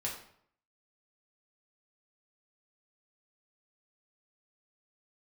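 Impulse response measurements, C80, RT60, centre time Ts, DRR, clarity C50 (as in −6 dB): 9.5 dB, 0.65 s, 31 ms, −3.5 dB, 6.0 dB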